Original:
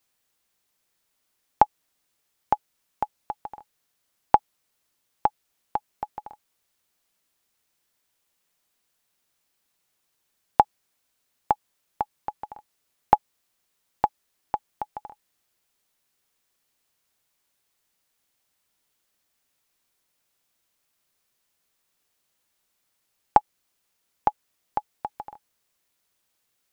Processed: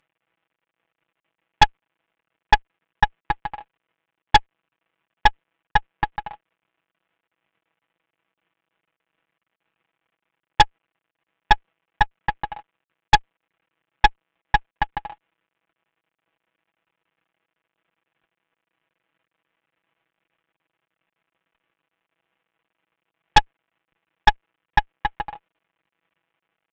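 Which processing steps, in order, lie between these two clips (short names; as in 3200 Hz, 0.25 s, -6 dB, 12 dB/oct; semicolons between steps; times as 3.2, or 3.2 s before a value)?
CVSD 16 kbps; comb 6.1 ms, depth 64%; added harmonics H 5 -18 dB, 6 -9 dB, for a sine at -10.5 dBFS; upward expander 1.5:1, over -29 dBFS; gain +8 dB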